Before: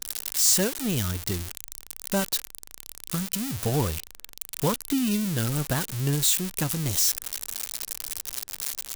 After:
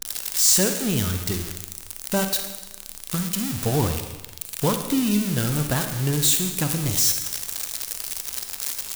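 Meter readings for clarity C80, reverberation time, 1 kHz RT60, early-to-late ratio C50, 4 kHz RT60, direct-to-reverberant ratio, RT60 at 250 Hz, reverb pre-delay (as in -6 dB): 9.0 dB, 1.1 s, 1.1 s, 7.0 dB, 1.0 s, 6.0 dB, 1.1 s, 29 ms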